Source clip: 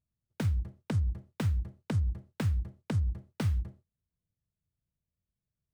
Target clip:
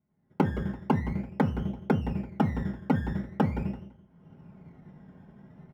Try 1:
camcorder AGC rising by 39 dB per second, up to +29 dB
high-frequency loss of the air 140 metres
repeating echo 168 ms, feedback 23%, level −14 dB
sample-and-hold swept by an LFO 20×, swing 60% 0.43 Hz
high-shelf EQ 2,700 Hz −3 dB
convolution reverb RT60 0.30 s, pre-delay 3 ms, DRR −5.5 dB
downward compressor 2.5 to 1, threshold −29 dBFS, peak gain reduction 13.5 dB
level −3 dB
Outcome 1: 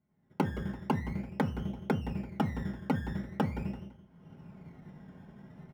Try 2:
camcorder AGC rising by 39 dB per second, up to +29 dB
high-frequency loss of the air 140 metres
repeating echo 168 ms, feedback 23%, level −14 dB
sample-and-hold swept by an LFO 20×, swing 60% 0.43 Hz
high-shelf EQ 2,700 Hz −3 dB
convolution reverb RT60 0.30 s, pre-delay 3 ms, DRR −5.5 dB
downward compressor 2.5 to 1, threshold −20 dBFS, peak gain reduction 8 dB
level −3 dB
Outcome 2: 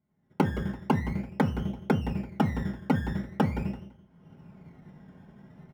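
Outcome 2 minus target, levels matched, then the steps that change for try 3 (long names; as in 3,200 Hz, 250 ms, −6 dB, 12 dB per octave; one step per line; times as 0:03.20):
4,000 Hz band +4.5 dB
change: high-shelf EQ 2,700 Hz −11 dB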